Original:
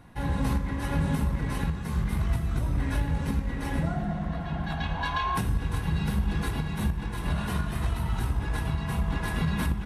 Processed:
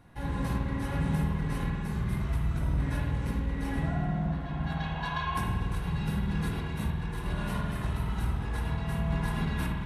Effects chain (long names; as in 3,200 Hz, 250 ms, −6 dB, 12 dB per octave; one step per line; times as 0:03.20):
spring reverb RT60 1.4 s, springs 51 ms, chirp 30 ms, DRR 0 dB
level −5.5 dB